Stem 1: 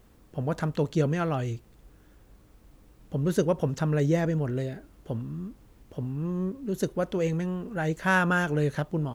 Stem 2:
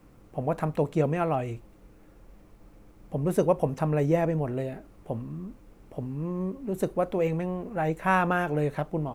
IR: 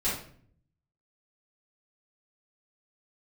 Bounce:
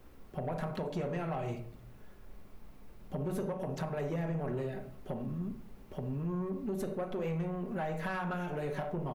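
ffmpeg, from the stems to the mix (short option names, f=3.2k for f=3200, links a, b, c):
-filter_complex "[0:a]volume=-2dB,asplit=2[a][b];[b]volume=-21.5dB[c];[1:a]equalizer=f=140:t=o:w=1.6:g=-11.5,alimiter=limit=-18dB:level=0:latency=1:release=270,adelay=5.3,volume=-5dB,asplit=3[d][e][f];[e]volume=-10.5dB[g];[f]apad=whole_len=403079[h];[a][h]sidechaincompress=threshold=-43dB:ratio=8:attack=16:release=193[i];[2:a]atrim=start_sample=2205[j];[c][g]amix=inputs=2:normalize=0[k];[k][j]afir=irnorm=-1:irlink=0[l];[i][d][l]amix=inputs=3:normalize=0,equalizer=f=7.5k:t=o:w=0.91:g=-5,acrossover=split=150[m][n];[n]acompressor=threshold=-31dB:ratio=4[o];[m][o]amix=inputs=2:normalize=0,asoftclip=type=tanh:threshold=-28dB"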